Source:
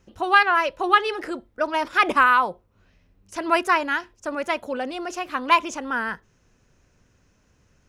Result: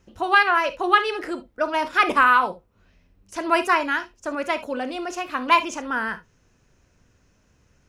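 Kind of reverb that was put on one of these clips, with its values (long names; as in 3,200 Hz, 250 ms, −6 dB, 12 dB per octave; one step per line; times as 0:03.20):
reverb whose tail is shaped and stops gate 90 ms flat, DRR 10 dB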